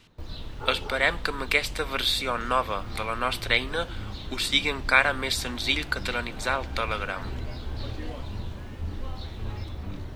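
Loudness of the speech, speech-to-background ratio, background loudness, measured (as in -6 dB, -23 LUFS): -26.5 LUFS, 12.0 dB, -38.5 LUFS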